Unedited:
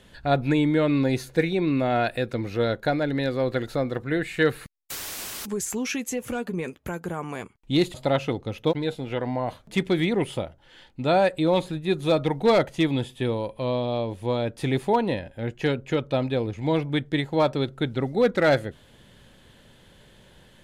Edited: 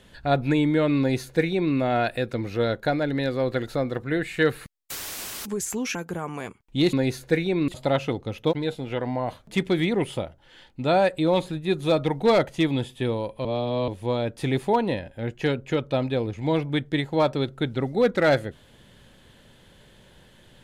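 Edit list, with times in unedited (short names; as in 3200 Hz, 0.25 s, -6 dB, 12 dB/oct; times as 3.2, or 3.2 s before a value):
0.99–1.74 copy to 7.88
5.95–6.9 cut
13.65–14.08 reverse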